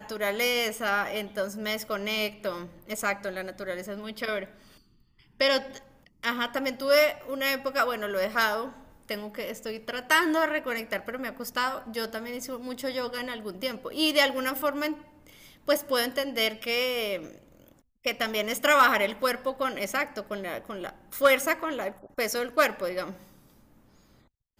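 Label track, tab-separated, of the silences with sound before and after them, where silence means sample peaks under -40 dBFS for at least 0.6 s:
4.450000	5.400000	silence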